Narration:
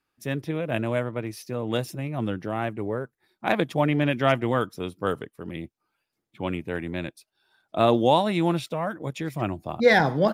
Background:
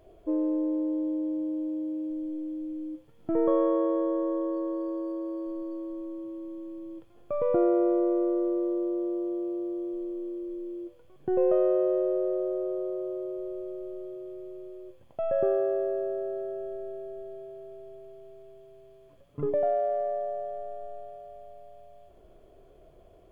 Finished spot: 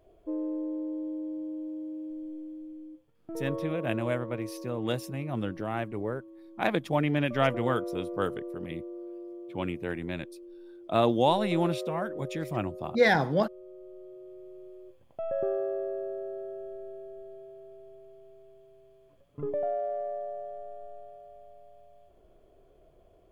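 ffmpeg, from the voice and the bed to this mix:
ffmpeg -i stem1.wav -i stem2.wav -filter_complex "[0:a]adelay=3150,volume=-4dB[link_01];[1:a]volume=1.5dB,afade=type=out:start_time=2.27:duration=0.89:silence=0.501187,afade=type=in:start_time=13.6:duration=1.08:silence=0.446684[link_02];[link_01][link_02]amix=inputs=2:normalize=0" out.wav

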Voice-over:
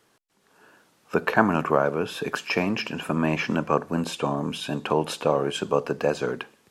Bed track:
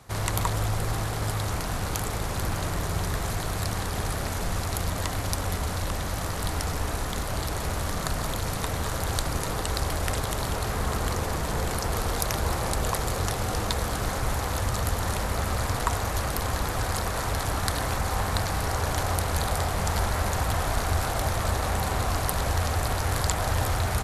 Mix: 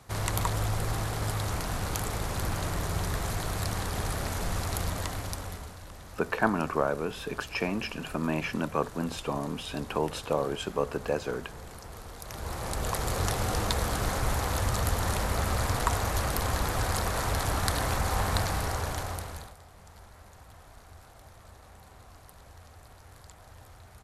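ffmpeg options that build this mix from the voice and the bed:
ffmpeg -i stem1.wav -i stem2.wav -filter_complex "[0:a]adelay=5050,volume=-6dB[link_01];[1:a]volume=13dB,afade=type=out:start_time=4.82:duration=0.94:silence=0.199526,afade=type=in:start_time=12.21:duration=1.05:silence=0.16788,afade=type=out:start_time=18.39:duration=1.16:silence=0.0595662[link_02];[link_01][link_02]amix=inputs=2:normalize=0" out.wav

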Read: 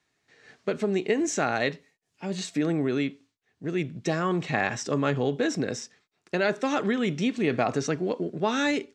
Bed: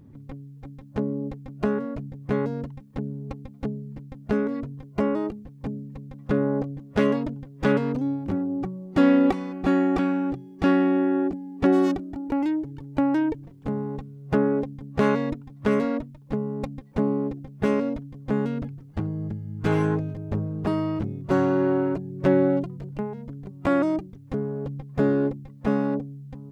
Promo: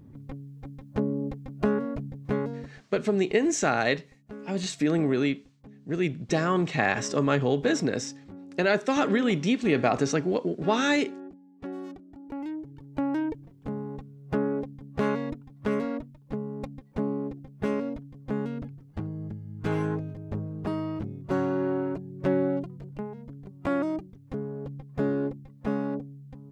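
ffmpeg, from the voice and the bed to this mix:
ffmpeg -i stem1.wav -i stem2.wav -filter_complex "[0:a]adelay=2250,volume=1.5dB[link_01];[1:a]volume=12dB,afade=type=out:start_time=2.1:duration=0.83:silence=0.133352,afade=type=in:start_time=11.9:duration=1.24:silence=0.237137[link_02];[link_01][link_02]amix=inputs=2:normalize=0" out.wav

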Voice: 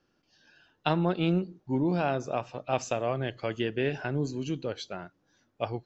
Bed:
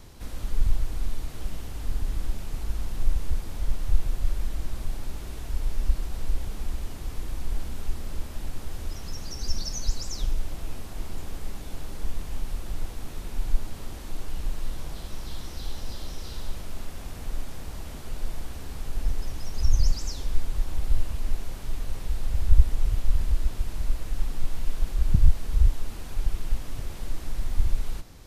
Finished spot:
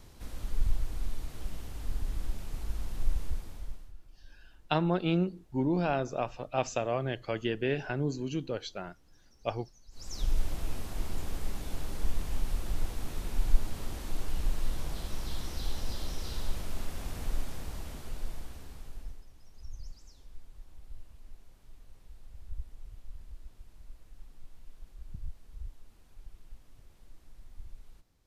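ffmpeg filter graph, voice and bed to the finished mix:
ffmpeg -i stem1.wav -i stem2.wav -filter_complex "[0:a]adelay=3850,volume=-1.5dB[link_01];[1:a]volume=22.5dB,afade=type=out:start_time=3.19:duration=0.74:silence=0.0707946,afade=type=in:start_time=9.91:duration=0.47:silence=0.0398107,afade=type=out:start_time=17.24:duration=2.01:silence=0.0749894[link_02];[link_01][link_02]amix=inputs=2:normalize=0" out.wav

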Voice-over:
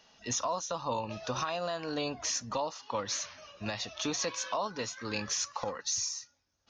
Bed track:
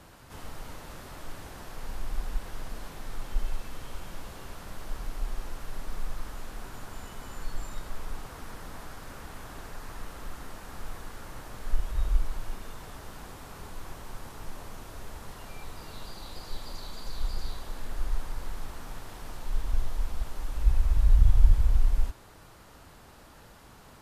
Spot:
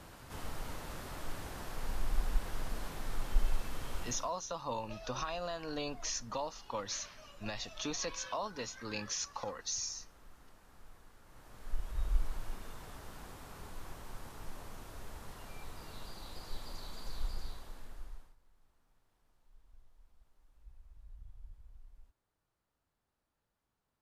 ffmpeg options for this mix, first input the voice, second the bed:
ffmpeg -i stem1.wav -i stem2.wav -filter_complex "[0:a]adelay=3800,volume=-5dB[link_01];[1:a]volume=12dB,afade=type=out:start_time=4.02:duration=0.29:silence=0.133352,afade=type=in:start_time=11.24:duration=1.02:silence=0.237137,afade=type=out:start_time=17.11:duration=1.25:silence=0.0398107[link_02];[link_01][link_02]amix=inputs=2:normalize=0" out.wav

